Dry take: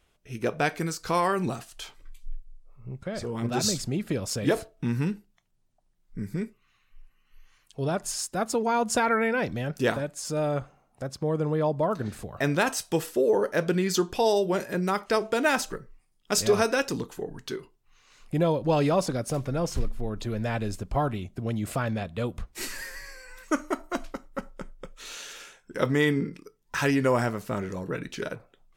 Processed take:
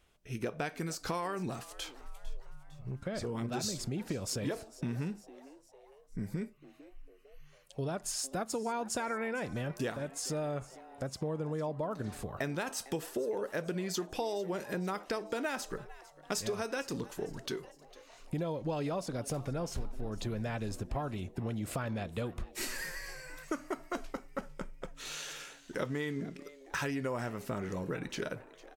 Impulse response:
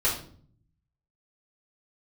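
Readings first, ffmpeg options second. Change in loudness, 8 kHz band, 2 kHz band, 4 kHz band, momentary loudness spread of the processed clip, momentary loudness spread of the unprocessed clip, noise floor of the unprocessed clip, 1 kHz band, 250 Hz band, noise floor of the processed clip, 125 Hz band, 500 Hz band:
-10.0 dB, -7.0 dB, -9.5 dB, -7.5 dB, 11 LU, 16 LU, -68 dBFS, -10.5 dB, -9.0 dB, -59 dBFS, -8.0 dB, -10.0 dB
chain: -filter_complex "[0:a]acompressor=threshold=0.0282:ratio=6,asplit=2[s0][s1];[s1]asplit=4[s2][s3][s4][s5];[s2]adelay=453,afreqshift=130,volume=0.112[s6];[s3]adelay=906,afreqshift=260,volume=0.0596[s7];[s4]adelay=1359,afreqshift=390,volume=0.0316[s8];[s5]adelay=1812,afreqshift=520,volume=0.0168[s9];[s6][s7][s8][s9]amix=inputs=4:normalize=0[s10];[s0][s10]amix=inputs=2:normalize=0,volume=0.841"

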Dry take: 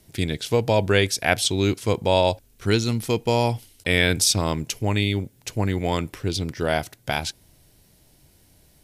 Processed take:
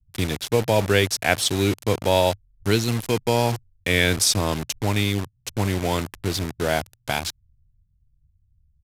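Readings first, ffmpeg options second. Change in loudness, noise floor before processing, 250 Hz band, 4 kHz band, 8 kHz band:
0.0 dB, -58 dBFS, 0.0 dB, +0.5 dB, +1.0 dB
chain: -filter_complex "[0:a]acrossover=split=110[s0][s1];[s1]acrusher=bits=4:mix=0:aa=0.000001[s2];[s0][s2]amix=inputs=2:normalize=0,aresample=32000,aresample=44100"

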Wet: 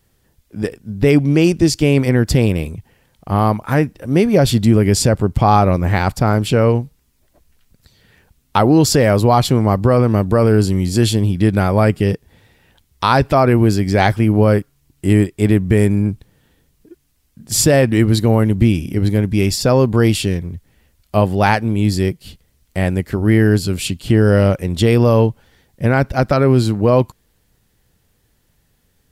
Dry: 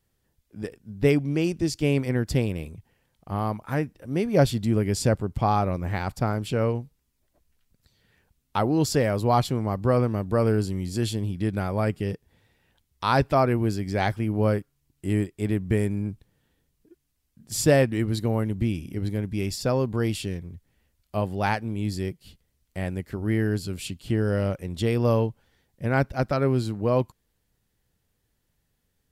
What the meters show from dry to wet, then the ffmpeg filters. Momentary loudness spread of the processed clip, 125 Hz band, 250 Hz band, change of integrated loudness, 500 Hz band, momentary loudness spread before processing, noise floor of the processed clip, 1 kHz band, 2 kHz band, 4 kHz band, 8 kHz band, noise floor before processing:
8 LU, +11.0 dB, +11.0 dB, +10.5 dB, +10.0 dB, 11 LU, -61 dBFS, +10.0 dB, +10.0 dB, +12.0 dB, +12.5 dB, -74 dBFS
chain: -af "alimiter=level_in=4.73:limit=0.891:release=50:level=0:latency=1,volume=0.891"

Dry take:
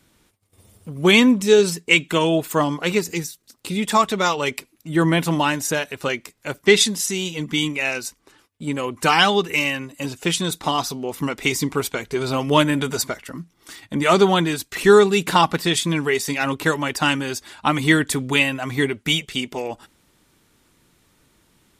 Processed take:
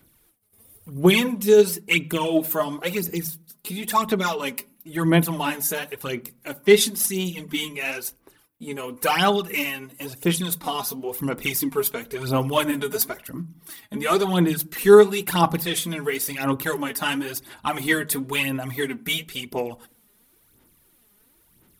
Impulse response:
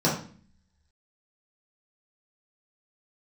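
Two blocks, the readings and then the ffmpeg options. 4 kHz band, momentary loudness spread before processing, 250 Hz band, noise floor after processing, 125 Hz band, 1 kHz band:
-5.5 dB, 13 LU, -3.5 dB, -61 dBFS, -2.5 dB, -4.5 dB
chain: -filter_complex "[0:a]aexciter=amount=6.2:drive=5:freq=10000,aphaser=in_gain=1:out_gain=1:delay=4.9:decay=0.63:speed=0.97:type=sinusoidal,asplit=2[s0][s1];[1:a]atrim=start_sample=2205,lowpass=2400[s2];[s1][s2]afir=irnorm=-1:irlink=0,volume=0.0299[s3];[s0][s3]amix=inputs=2:normalize=0,volume=0.422"

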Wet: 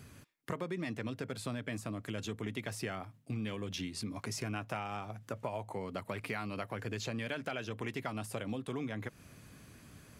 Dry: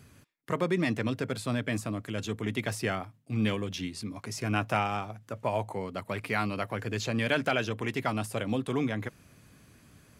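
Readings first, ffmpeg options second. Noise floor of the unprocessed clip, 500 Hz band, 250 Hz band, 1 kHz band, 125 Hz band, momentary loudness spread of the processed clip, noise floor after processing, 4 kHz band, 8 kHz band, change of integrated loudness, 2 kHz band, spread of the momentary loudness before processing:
-60 dBFS, -8.5 dB, -8.0 dB, -9.0 dB, -7.5 dB, 7 LU, -61 dBFS, -7.0 dB, -4.0 dB, -8.0 dB, -9.0 dB, 8 LU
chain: -af "acompressor=threshold=0.0141:ratio=6,volume=1.19"

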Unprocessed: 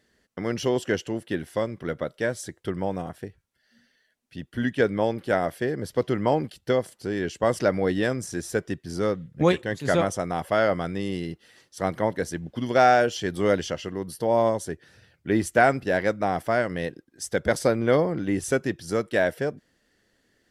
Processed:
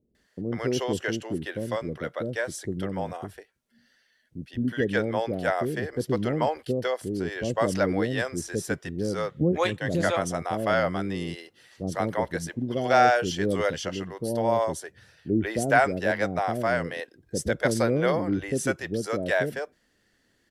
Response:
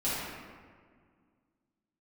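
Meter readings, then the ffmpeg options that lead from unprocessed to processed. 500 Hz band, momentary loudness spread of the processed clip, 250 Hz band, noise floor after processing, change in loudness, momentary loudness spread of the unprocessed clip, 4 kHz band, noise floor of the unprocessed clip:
-2.5 dB, 10 LU, -1.0 dB, -69 dBFS, -1.5 dB, 12 LU, 0.0 dB, -70 dBFS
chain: -filter_complex "[0:a]acrossover=split=470[s0][s1];[s1]adelay=150[s2];[s0][s2]amix=inputs=2:normalize=0"

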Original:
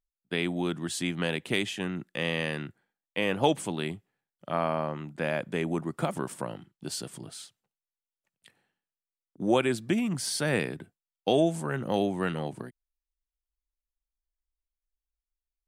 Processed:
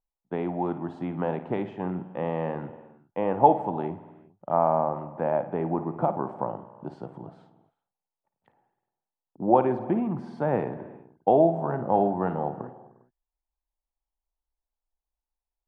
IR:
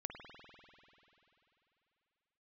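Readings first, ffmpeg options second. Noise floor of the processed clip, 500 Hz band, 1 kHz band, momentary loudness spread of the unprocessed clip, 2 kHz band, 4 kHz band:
under -85 dBFS, +4.5 dB, +9.0 dB, 14 LU, -11.0 dB, under -20 dB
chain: -filter_complex "[0:a]lowpass=f=860:t=q:w=3.5,asplit=2[s0][s1];[1:a]atrim=start_sample=2205,afade=t=out:st=0.41:d=0.01,atrim=end_sample=18522,adelay=55[s2];[s1][s2]afir=irnorm=-1:irlink=0,volume=0.422[s3];[s0][s3]amix=inputs=2:normalize=0"

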